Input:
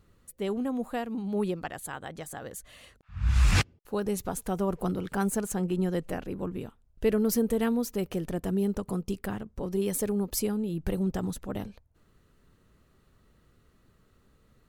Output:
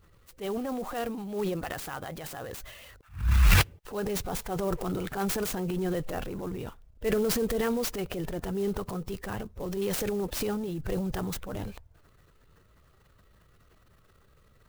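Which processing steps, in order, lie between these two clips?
coarse spectral quantiser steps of 15 dB; low-pass 11 kHz 12 dB/octave; peaking EQ 230 Hz -9 dB 1.1 oct; transient shaper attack -7 dB, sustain +8 dB; sampling jitter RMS 0.03 ms; trim +3.5 dB

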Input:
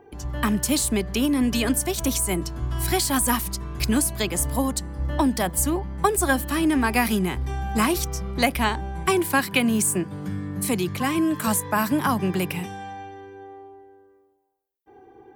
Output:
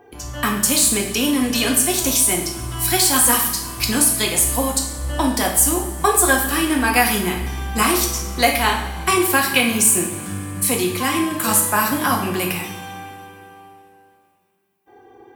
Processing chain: tilt EQ +1.5 dB/octave; two-slope reverb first 0.64 s, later 3.1 s, from -18 dB, DRR -0.5 dB; trim +2 dB

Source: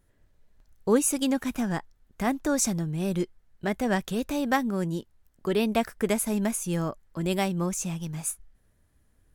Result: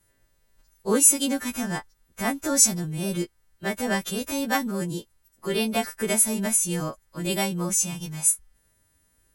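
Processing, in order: partials quantised in pitch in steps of 2 st

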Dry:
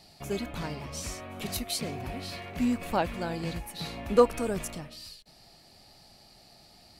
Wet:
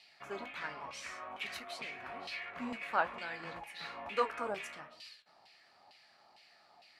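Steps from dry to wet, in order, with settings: LFO band-pass saw down 2.2 Hz 860–2700 Hz; flange 1.2 Hz, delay 9.7 ms, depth 9.9 ms, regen -58%; trim +9 dB

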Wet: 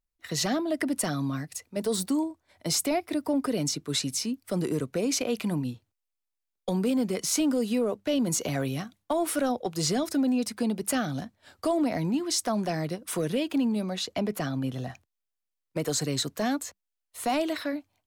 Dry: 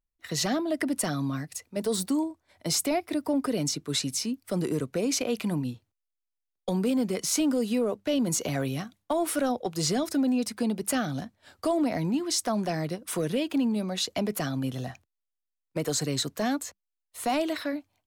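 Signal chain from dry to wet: 13.95–14.90 s: treble shelf 4.4 kHz -6.5 dB

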